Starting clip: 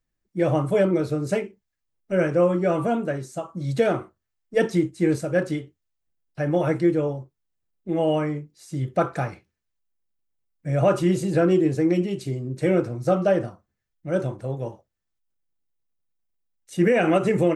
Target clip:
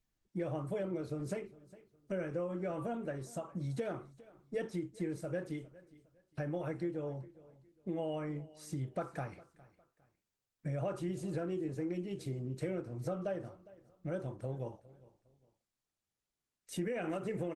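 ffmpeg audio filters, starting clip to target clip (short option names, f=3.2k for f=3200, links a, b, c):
-filter_complex "[0:a]acompressor=threshold=-34dB:ratio=4,asplit=2[a][b];[b]aecho=0:1:408|816:0.1|0.03[c];[a][c]amix=inputs=2:normalize=0,volume=-3dB" -ar 48000 -c:a libopus -b:a 20k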